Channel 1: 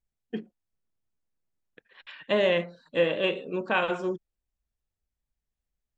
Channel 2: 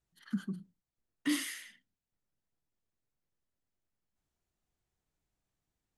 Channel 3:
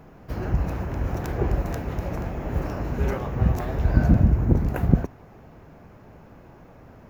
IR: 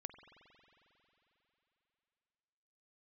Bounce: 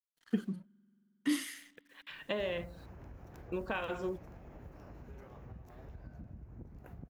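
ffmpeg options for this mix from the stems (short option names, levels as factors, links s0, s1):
-filter_complex "[0:a]acompressor=threshold=0.0316:ratio=6,acrusher=bits=10:mix=0:aa=0.000001,volume=0.708,asplit=3[s0][s1][s2];[s0]atrim=end=2.86,asetpts=PTS-STARTPTS,afade=t=out:st=2.856:d=0.004:c=hsin[s3];[s1]atrim=start=2.86:end=3.52,asetpts=PTS-STARTPTS,volume=0[s4];[s2]atrim=start=3.52,asetpts=PTS-STARTPTS,afade=t=in:d=0.004:c=hsin[s5];[s3][s4][s5]concat=n=3:v=0:a=1[s6];[1:a]equalizer=f=250:t=o:w=1.8:g=4,aeval=exprs='sgn(val(0))*max(abs(val(0))-0.00119,0)':c=same,volume=0.631,asplit=2[s7][s8];[s8]volume=0.224[s9];[2:a]acompressor=threshold=0.0355:ratio=5,adelay=2100,volume=0.119[s10];[3:a]atrim=start_sample=2205[s11];[s9][s11]afir=irnorm=-1:irlink=0[s12];[s6][s7][s10][s12]amix=inputs=4:normalize=0"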